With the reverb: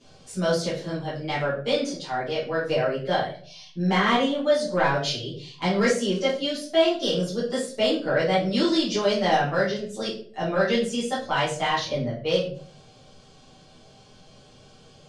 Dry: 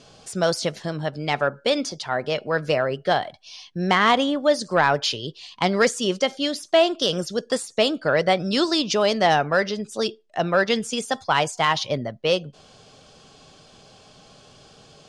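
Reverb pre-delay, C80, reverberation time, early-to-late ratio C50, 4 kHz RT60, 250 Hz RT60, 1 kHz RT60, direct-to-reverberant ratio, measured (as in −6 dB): 7 ms, 11.0 dB, 0.45 s, 5.5 dB, 0.35 s, 0.65 s, 0.40 s, −11.0 dB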